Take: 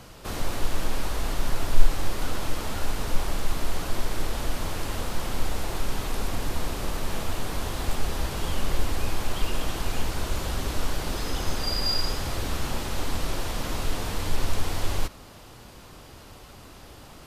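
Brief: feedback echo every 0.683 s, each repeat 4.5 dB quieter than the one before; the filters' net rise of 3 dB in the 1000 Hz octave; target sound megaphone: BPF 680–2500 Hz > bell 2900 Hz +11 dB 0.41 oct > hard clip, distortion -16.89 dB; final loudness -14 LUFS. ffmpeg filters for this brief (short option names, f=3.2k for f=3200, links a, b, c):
-af "highpass=680,lowpass=2.5k,equalizer=f=1k:t=o:g=5,equalizer=f=2.9k:t=o:w=0.41:g=11,aecho=1:1:683|1366|2049|2732|3415|4098|4781|5464|6147:0.596|0.357|0.214|0.129|0.0772|0.0463|0.0278|0.0167|0.01,asoftclip=type=hard:threshold=-28.5dB,volume=19.5dB"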